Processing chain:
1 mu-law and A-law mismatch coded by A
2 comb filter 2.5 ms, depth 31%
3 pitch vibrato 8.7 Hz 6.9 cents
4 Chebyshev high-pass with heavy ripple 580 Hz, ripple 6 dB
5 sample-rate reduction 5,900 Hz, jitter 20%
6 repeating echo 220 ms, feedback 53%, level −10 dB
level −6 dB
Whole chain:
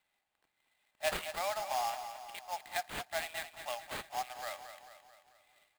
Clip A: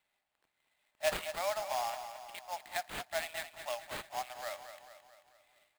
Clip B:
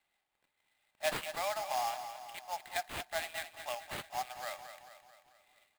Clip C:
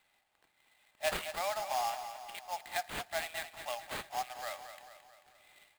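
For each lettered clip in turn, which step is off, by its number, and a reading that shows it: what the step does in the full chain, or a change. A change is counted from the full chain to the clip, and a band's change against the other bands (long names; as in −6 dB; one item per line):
2, change in momentary loudness spread +1 LU
3, 125 Hz band +1.5 dB
1, distortion level −24 dB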